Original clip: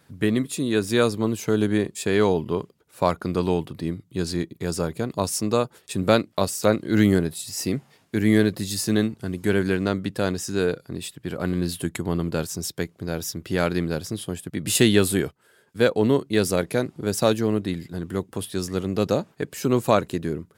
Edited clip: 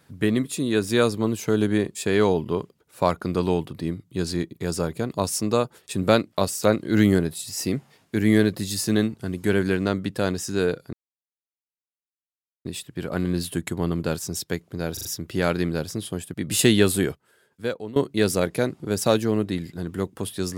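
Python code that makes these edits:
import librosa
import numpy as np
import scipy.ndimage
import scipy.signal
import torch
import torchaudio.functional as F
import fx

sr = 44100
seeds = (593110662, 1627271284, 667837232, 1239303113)

y = fx.edit(x, sr, fx.insert_silence(at_s=10.93, length_s=1.72),
    fx.stutter(start_s=13.21, slice_s=0.04, count=4),
    fx.fade_out_to(start_s=15.26, length_s=0.86, floor_db=-20.5), tone=tone)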